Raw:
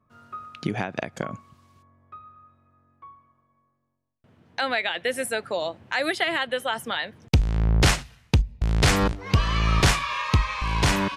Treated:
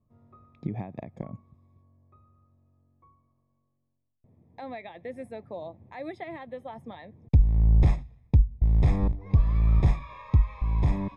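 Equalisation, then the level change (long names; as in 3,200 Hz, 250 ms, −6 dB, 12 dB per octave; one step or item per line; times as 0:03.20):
dynamic equaliser 440 Hz, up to −5 dB, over −39 dBFS, Q 1.4
moving average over 30 samples
low-shelf EQ 95 Hz +10 dB
−5.0 dB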